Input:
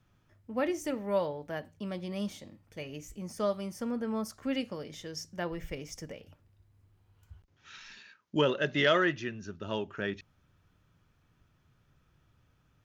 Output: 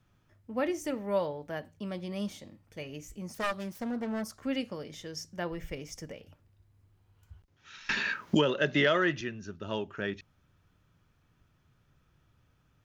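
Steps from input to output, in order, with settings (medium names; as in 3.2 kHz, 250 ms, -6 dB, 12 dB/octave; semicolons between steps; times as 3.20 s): 3.34–4.24 s: self-modulated delay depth 0.62 ms; 7.89–9.21 s: three bands compressed up and down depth 100%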